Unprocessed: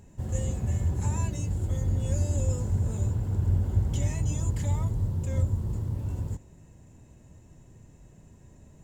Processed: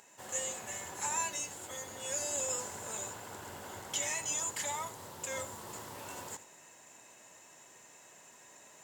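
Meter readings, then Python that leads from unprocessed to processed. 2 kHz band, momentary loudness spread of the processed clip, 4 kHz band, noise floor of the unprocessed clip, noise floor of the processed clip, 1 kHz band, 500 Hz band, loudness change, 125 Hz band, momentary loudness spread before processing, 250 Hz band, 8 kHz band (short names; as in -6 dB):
+7.5 dB, 22 LU, n/a, -54 dBFS, -58 dBFS, +4.5 dB, -3.0 dB, -8.0 dB, -30.0 dB, 5 LU, -16.5 dB, +8.0 dB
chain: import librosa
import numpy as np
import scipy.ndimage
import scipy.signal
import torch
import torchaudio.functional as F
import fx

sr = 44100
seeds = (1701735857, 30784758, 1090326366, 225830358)

p1 = scipy.signal.sosfilt(scipy.signal.butter(2, 970.0, 'highpass', fs=sr, output='sos'), x)
p2 = fx.rider(p1, sr, range_db=4, speed_s=2.0)
p3 = p2 + fx.echo_single(p2, sr, ms=82, db=-16.5, dry=0)
y = F.gain(torch.from_numpy(p3), 7.5).numpy()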